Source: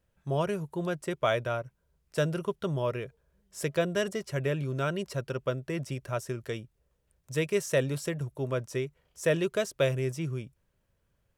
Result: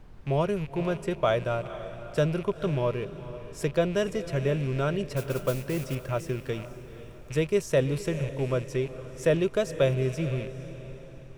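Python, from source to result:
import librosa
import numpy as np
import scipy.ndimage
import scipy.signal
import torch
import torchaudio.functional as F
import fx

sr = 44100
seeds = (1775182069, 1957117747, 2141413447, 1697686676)

y = fx.rattle_buzz(x, sr, strikes_db=-42.0, level_db=-35.0)
y = fx.dmg_noise_colour(y, sr, seeds[0], colour='brown', level_db=-50.0)
y = fx.high_shelf(y, sr, hz=5300.0, db=-9.0)
y = fx.mod_noise(y, sr, seeds[1], snr_db=16, at=(5.16, 5.95))
y = fx.dynamic_eq(y, sr, hz=1900.0, q=1.2, threshold_db=-45.0, ratio=4.0, max_db=-5)
y = fx.echo_diffused(y, sr, ms=481, feedback_pct=41, wet_db=-13.0)
y = y * 10.0 ** (3.5 / 20.0)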